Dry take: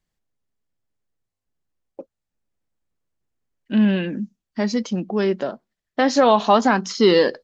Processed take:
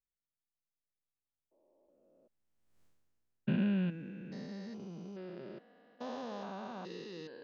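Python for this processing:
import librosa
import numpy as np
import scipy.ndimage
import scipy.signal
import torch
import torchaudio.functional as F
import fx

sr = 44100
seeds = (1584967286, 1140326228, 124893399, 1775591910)

y = fx.spec_steps(x, sr, hold_ms=400)
y = fx.doppler_pass(y, sr, speed_mps=18, closest_m=1.4, pass_at_s=2.83)
y = y * librosa.db_to_amplitude(11.0)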